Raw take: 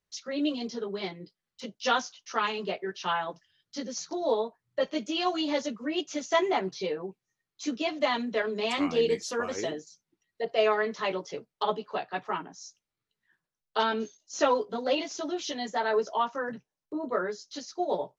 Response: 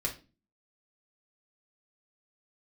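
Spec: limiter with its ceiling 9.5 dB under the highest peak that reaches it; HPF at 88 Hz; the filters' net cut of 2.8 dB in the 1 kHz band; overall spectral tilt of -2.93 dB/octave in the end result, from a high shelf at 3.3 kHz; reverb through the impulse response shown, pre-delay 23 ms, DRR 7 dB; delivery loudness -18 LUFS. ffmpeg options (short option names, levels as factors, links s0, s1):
-filter_complex "[0:a]highpass=88,equalizer=f=1000:t=o:g=-4,highshelf=f=3300:g=3.5,alimiter=limit=0.0841:level=0:latency=1,asplit=2[s0][s1];[1:a]atrim=start_sample=2205,adelay=23[s2];[s1][s2]afir=irnorm=-1:irlink=0,volume=0.282[s3];[s0][s3]amix=inputs=2:normalize=0,volume=5.31"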